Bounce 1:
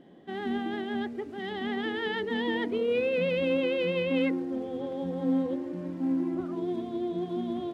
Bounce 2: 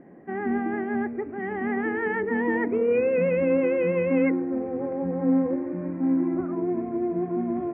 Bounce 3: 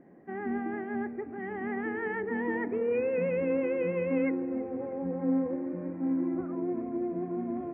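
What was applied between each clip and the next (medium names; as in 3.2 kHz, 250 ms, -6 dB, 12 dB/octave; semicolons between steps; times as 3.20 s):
steep low-pass 2.4 kHz 72 dB/octave; trim +5 dB
filtered feedback delay 315 ms, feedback 81%, low-pass 1.6 kHz, level -17.5 dB; trim -6.5 dB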